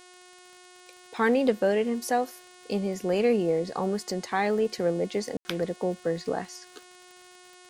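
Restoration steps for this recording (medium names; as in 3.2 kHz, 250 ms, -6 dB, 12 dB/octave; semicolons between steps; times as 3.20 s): de-click; de-hum 362 Hz, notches 28; room tone fill 5.37–5.45 s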